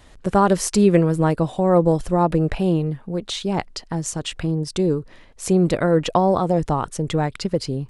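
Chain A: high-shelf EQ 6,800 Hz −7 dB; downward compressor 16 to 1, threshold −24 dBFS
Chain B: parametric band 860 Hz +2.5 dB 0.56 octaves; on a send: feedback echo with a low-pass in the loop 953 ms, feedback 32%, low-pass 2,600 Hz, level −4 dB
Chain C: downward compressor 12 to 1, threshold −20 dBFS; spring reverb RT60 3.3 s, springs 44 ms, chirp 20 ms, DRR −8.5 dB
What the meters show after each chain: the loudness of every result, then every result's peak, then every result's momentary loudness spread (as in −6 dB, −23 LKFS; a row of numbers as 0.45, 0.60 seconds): −30.0, −18.5, −17.0 LKFS; −14.0, −2.5, −3.0 dBFS; 3, 8, 7 LU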